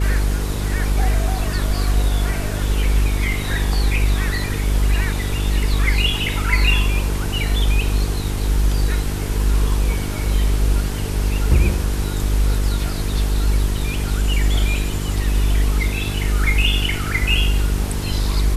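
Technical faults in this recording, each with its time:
buzz 50 Hz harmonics 9 -23 dBFS

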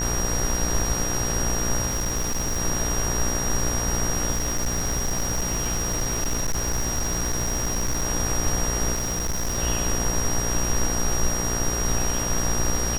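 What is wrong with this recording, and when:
buzz 60 Hz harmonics 32 -29 dBFS
crackle 61/s -30 dBFS
tone 5700 Hz -27 dBFS
1.86–2.6 clipped -21 dBFS
4.3–8.05 clipped -20 dBFS
8.94–9.59 clipped -22 dBFS

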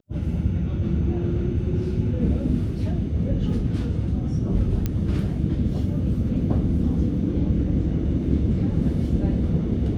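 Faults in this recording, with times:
4.86 pop -12 dBFS

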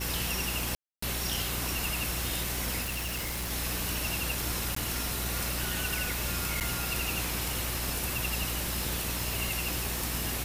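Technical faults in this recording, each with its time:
crackle 510/s -37 dBFS
hum 60 Hz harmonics 6 -37 dBFS
0.75–1.02 gap 0.274 s
2.82–3.52 clipped -30.5 dBFS
4.75–4.76 gap 14 ms
6.6–6.61 gap 8.5 ms

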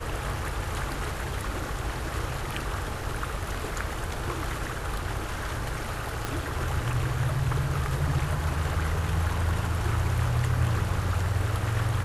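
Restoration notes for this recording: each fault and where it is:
6.25 pop -14 dBFS

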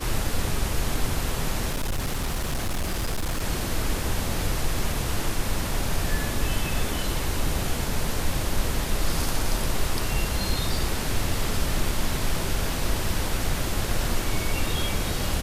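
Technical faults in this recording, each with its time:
1.7–3.44 clipped -22.5 dBFS

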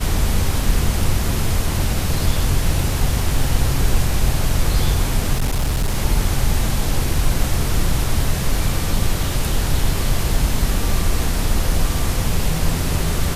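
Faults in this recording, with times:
5.33–5.96 clipped -14.5 dBFS

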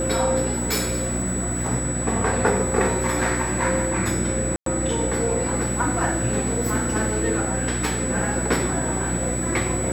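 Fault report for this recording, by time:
hum 60 Hz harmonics 6 -28 dBFS
tone 7900 Hz -28 dBFS
0.58–1.69 clipped -18 dBFS
4.56–4.66 gap 0.103 s

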